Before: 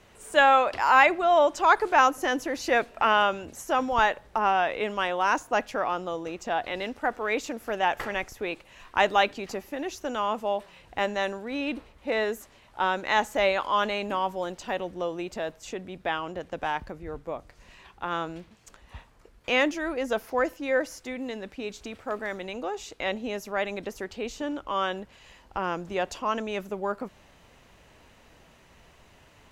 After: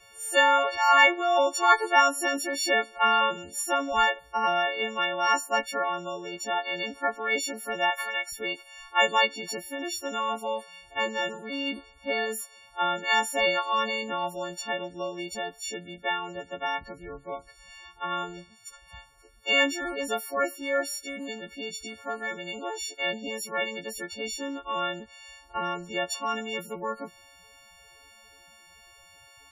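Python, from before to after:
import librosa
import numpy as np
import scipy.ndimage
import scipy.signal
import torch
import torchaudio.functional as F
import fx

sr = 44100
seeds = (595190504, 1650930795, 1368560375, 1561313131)

y = fx.freq_snap(x, sr, grid_st=4)
y = fx.spec_topn(y, sr, count=32)
y = fx.highpass(y, sr, hz=640.0, slope=12, at=(7.9, 8.31), fade=0.02)
y = y * 10.0 ** (-3.0 / 20.0)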